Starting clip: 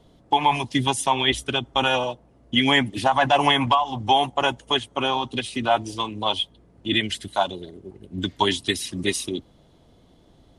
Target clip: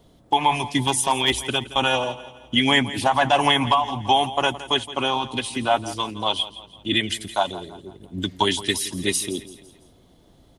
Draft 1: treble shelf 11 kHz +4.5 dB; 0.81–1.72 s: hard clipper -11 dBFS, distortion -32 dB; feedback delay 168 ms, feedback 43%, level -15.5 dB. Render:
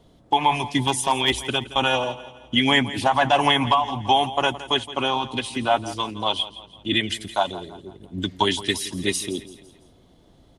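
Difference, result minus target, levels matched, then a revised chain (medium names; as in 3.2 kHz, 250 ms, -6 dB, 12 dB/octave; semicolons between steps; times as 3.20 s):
8 kHz band -3.0 dB
treble shelf 11 kHz +15 dB; 0.81–1.72 s: hard clipper -11 dBFS, distortion -31 dB; feedback delay 168 ms, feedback 43%, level -15.5 dB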